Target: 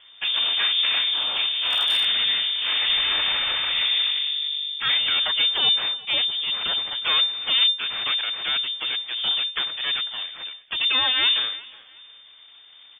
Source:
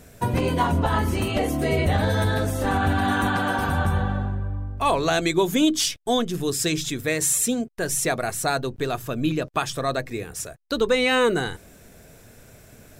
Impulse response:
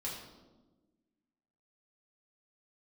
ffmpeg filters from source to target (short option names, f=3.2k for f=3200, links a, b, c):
-filter_complex "[0:a]asplit=3[a][b][c];[a]afade=t=out:st=7.03:d=0.02[d];[b]asplit=2[e][f];[f]highpass=f=720:p=1,volume=35dB,asoftclip=type=tanh:threshold=-10dB[g];[e][g]amix=inputs=2:normalize=0,lowpass=f=1.2k:p=1,volume=-6dB,afade=t=in:st=7.03:d=0.02,afade=t=out:st=7.67:d=0.02[h];[c]afade=t=in:st=7.67:d=0.02[i];[d][h][i]amix=inputs=3:normalize=0,bandreject=f=258.6:t=h:w=4,bandreject=f=517.2:t=h:w=4,bandreject=f=775.8:t=h:w=4,bandreject=f=1.0344k:t=h:w=4,bandreject=f=1.293k:t=h:w=4,aeval=exprs='abs(val(0))':c=same,lowpass=f=3.1k:t=q:w=0.5098,lowpass=f=3.1k:t=q:w=0.6013,lowpass=f=3.1k:t=q:w=0.9,lowpass=f=3.1k:t=q:w=2.563,afreqshift=-3600,asettb=1/sr,asplit=3[j][k][l];[j]atrim=end=2.894[m];[k]atrim=start=2.89:end=3.9,asetpts=PTS-STARTPTS,afade=t=in:d=0.004:c=qsin,afade=t=out:st=1.006:d=0.004:c=qsin,lowshelf=f=100:g=12[n];[l]atrim=start=3.896[o];[m][n]acrossfade=d=0.004:c1=hsin:c2=qsin[p];[p][o]acrossfade=d=0.004:c1=qsin:c2=hsin,aecho=1:1:361|722:0.106|0.0275,asettb=1/sr,asplit=3[q][r][s];[q]atrim=end=1.544[t];[r]atrim=start=1.54:end=2.05,asetpts=PTS-STARTPTS,afade=t=in:d=0.004:c=qsin,afade=t=out:st=0.506:d=0.004:c=qsin,asoftclip=type=hard:threshold=-15.5dB[u];[s]atrim=start=2.046[v];[t][u]acrossfade=d=0.004:c1=hsin:c2=qsin[w];[w][v]acrossfade=d=0.004:c1=qsin:c2=hsin"